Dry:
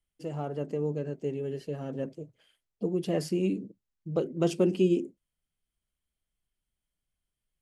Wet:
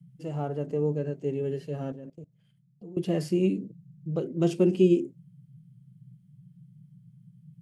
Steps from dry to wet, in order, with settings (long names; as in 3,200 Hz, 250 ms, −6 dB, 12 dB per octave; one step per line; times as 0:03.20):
noise in a band 120–180 Hz −56 dBFS
harmonic and percussive parts rebalanced percussive −8 dB
0:01.92–0:02.97: output level in coarse steps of 23 dB
level +4 dB